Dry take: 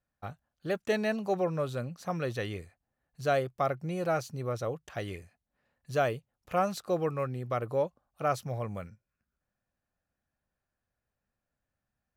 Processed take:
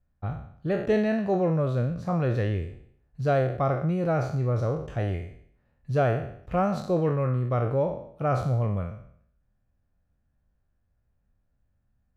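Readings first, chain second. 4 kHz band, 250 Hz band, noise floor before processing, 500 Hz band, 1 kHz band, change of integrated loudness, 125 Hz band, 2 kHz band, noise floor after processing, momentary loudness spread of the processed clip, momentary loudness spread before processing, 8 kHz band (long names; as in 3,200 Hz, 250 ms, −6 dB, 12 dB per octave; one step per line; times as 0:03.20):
−3.0 dB, +8.5 dB, below −85 dBFS, +4.5 dB, +2.5 dB, +5.5 dB, +11.5 dB, +1.0 dB, −72 dBFS, 10 LU, 12 LU, can't be measured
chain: peak hold with a decay on every bin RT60 0.63 s
RIAA equalisation playback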